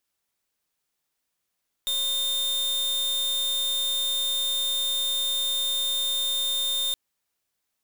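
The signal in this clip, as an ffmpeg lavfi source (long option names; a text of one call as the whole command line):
ffmpeg -f lavfi -i "aevalsrc='0.0501*(2*lt(mod(3630*t,1),0.44)-1)':duration=5.07:sample_rate=44100" out.wav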